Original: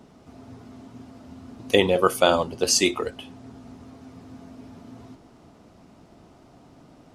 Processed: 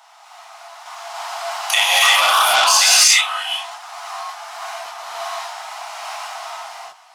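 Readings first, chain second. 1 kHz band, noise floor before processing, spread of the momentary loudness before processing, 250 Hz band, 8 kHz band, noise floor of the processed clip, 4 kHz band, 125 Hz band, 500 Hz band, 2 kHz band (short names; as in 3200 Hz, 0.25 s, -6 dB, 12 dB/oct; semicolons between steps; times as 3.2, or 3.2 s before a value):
+11.5 dB, -53 dBFS, 8 LU, under -25 dB, +13.0 dB, -48 dBFS, +14.0 dB, under -25 dB, -5.5 dB, +14.0 dB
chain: steep high-pass 710 Hz 72 dB/oct; compressor 2.5:1, threshold -42 dBFS, peak gain reduction 16.5 dB; chorus voices 6, 0.44 Hz, delay 29 ms, depth 3.3 ms; random-step tremolo, depth 95%; non-linear reverb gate 0.37 s rising, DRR -7.5 dB; maximiser +28 dB; core saturation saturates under 3300 Hz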